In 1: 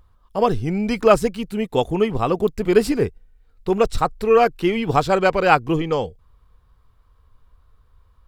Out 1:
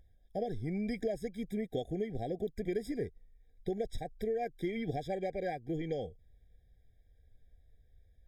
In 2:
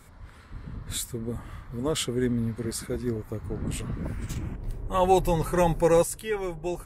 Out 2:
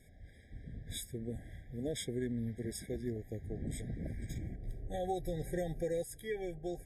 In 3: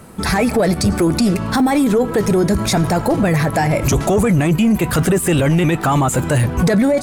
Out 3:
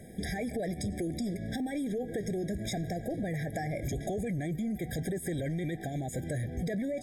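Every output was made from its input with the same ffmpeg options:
-af "acompressor=threshold=-24dB:ratio=6,afftfilt=real='re*eq(mod(floor(b*sr/1024/790),2),0)':imag='im*eq(mod(floor(b*sr/1024/790),2),0)':win_size=1024:overlap=0.75,volume=-8dB"

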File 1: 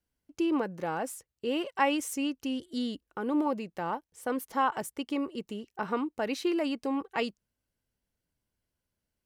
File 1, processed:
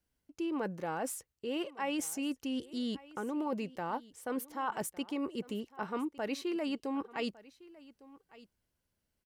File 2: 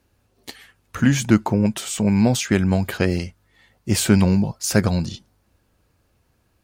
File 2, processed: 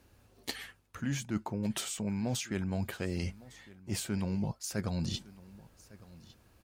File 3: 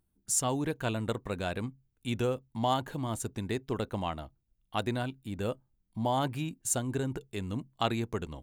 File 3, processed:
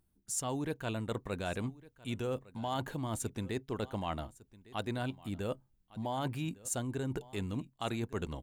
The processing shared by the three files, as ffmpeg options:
-af "areverse,acompressor=threshold=-34dB:ratio=6,areverse,aecho=1:1:1156:0.0944,volume=1.5dB"

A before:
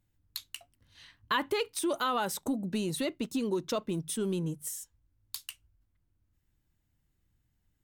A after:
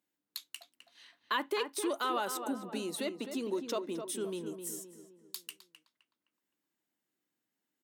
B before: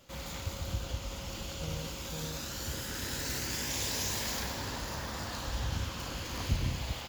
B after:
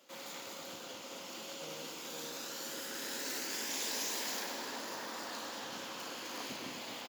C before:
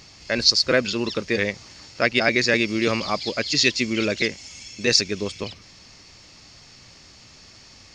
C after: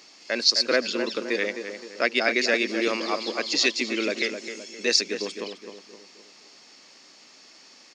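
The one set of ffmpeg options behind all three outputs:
-filter_complex "[0:a]highpass=f=250:w=0.5412,highpass=f=250:w=1.3066,asplit=2[a][b];[b]adelay=259,lowpass=f=2k:p=1,volume=-7.5dB,asplit=2[c][d];[d]adelay=259,lowpass=f=2k:p=1,volume=0.45,asplit=2[e][f];[f]adelay=259,lowpass=f=2k:p=1,volume=0.45,asplit=2[g][h];[h]adelay=259,lowpass=f=2k:p=1,volume=0.45,asplit=2[i][j];[j]adelay=259,lowpass=f=2k:p=1,volume=0.45[k];[c][e][g][i][k]amix=inputs=5:normalize=0[l];[a][l]amix=inputs=2:normalize=0,volume=-3dB"

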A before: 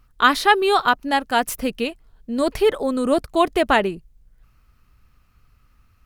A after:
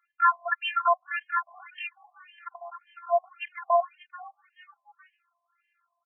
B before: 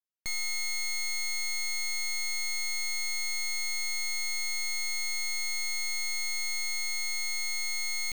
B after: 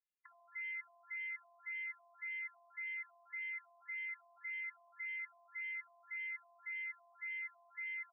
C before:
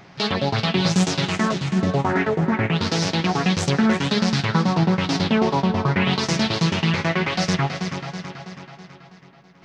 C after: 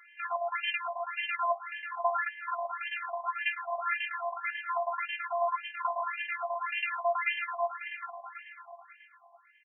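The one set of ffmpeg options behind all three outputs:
-filter_complex "[0:a]afftfilt=real='hypot(re,im)*cos(PI*b)':imag='0':win_size=512:overlap=0.75,aeval=exprs='0.708*(cos(1*acos(clip(val(0)/0.708,-1,1)))-cos(1*PI/2))+0.00708*(cos(4*acos(clip(val(0)/0.708,-1,1)))-cos(4*PI/2))':c=same,aeval=exprs='val(0)+0.00398*(sin(2*PI*60*n/s)+sin(2*PI*2*60*n/s)/2+sin(2*PI*3*60*n/s)/3+sin(2*PI*4*60*n/s)/4+sin(2*PI*5*60*n/s)/5)':c=same,asplit=2[a][b];[b]asplit=3[c][d][e];[c]adelay=429,afreqshift=47,volume=-21dB[f];[d]adelay=858,afreqshift=94,volume=-27.7dB[g];[e]adelay=1287,afreqshift=141,volume=-34.5dB[h];[f][g][h]amix=inputs=3:normalize=0[i];[a][i]amix=inputs=2:normalize=0,afftfilt=real='re*between(b*sr/1024,790*pow(2300/790,0.5+0.5*sin(2*PI*1.8*pts/sr))/1.41,790*pow(2300/790,0.5+0.5*sin(2*PI*1.8*pts/sr))*1.41)':imag='im*between(b*sr/1024,790*pow(2300/790,0.5+0.5*sin(2*PI*1.8*pts/sr))/1.41,790*pow(2300/790,0.5+0.5*sin(2*PI*1.8*pts/sr))*1.41)':win_size=1024:overlap=0.75,volume=1.5dB"

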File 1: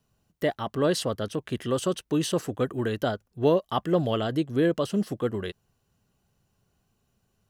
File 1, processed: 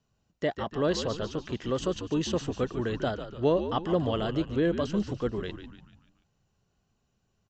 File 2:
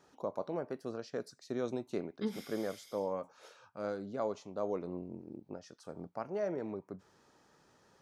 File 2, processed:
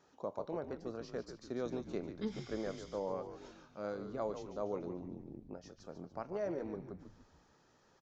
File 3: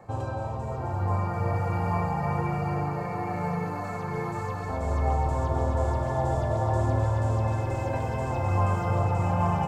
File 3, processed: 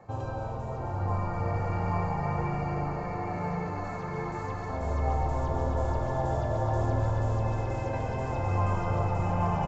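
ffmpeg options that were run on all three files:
-filter_complex "[0:a]aresample=16000,aresample=44100,asplit=2[a][b];[b]asplit=5[c][d][e][f][g];[c]adelay=145,afreqshift=-79,volume=-9.5dB[h];[d]adelay=290,afreqshift=-158,volume=-15.7dB[i];[e]adelay=435,afreqshift=-237,volume=-21.9dB[j];[f]adelay=580,afreqshift=-316,volume=-28.1dB[k];[g]adelay=725,afreqshift=-395,volume=-34.3dB[l];[h][i][j][k][l]amix=inputs=5:normalize=0[m];[a][m]amix=inputs=2:normalize=0,volume=-3dB"

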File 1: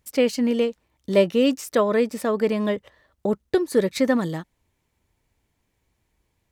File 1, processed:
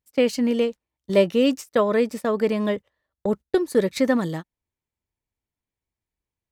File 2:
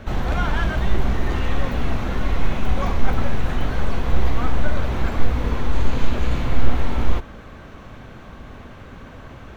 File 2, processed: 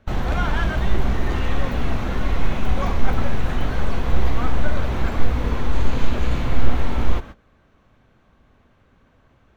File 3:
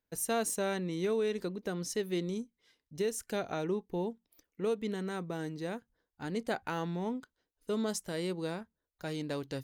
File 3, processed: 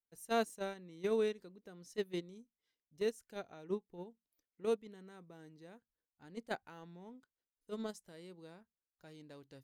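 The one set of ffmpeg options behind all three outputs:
-af "agate=range=-18dB:threshold=-30dB:ratio=16:detection=peak"

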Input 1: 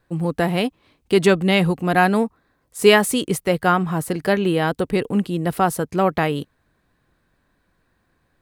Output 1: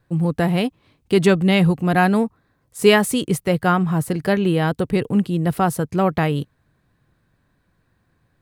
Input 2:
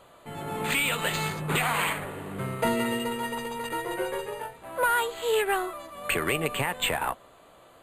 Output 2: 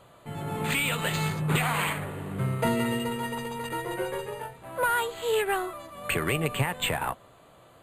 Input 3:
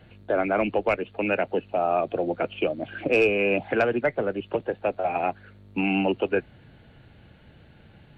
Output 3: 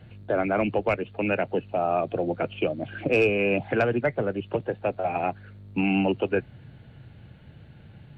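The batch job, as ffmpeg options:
-af "equalizer=f=120:w=1.1:g=9,volume=-1.5dB"

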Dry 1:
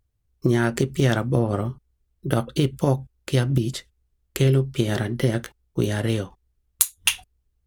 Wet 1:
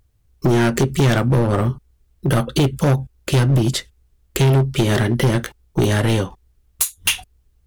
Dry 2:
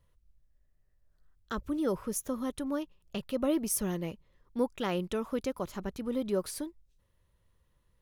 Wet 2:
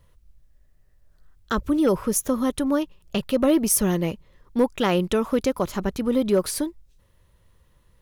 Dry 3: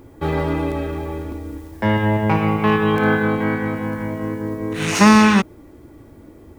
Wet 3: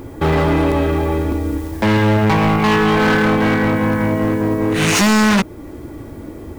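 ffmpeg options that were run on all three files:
-filter_complex "[0:a]asplit=2[a][b];[b]acompressor=threshold=-28dB:ratio=4,volume=-2.5dB[c];[a][c]amix=inputs=2:normalize=0,volume=18dB,asoftclip=hard,volume=-18dB,volume=6.5dB"

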